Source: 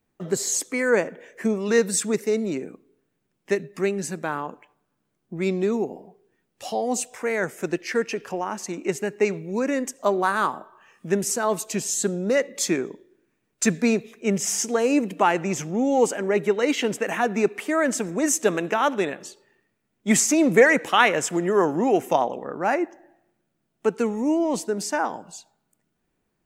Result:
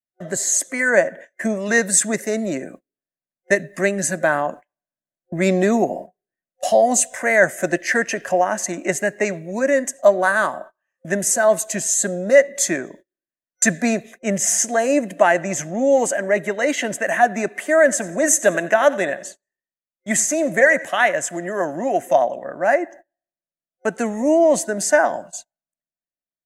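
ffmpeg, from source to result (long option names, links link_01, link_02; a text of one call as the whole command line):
ffmpeg -i in.wav -filter_complex "[0:a]asettb=1/sr,asplit=3[link_01][link_02][link_03];[link_01]atrim=end=17.624[link_04];[link_02]atrim=start=17.62:end=21.12,asetpts=PTS-STARTPTS,afade=type=in:duration=0.004:curve=qsin,afade=type=out:start_time=3.496:duration=0.004:curve=qsin,aecho=1:1:89|178|267:0.106|0.0392|0.0145,atrim=end_sample=154350[link_05];[link_03]atrim=start=21.116[link_06];[link_04][link_05]acrossfade=duration=0.004:curve1=hsin:curve2=qsin[link_07];[link_07][link_06]acrossfade=duration=0.004:curve1=qsin:curve2=hsin,agate=range=-31dB:threshold=-42dB:ratio=16:detection=peak,superequalizer=7b=0.631:8b=3.55:11b=2.82:15b=2.24:16b=2.24,dynaudnorm=framelen=310:gausssize=7:maxgain=11.5dB,volume=-1dB" out.wav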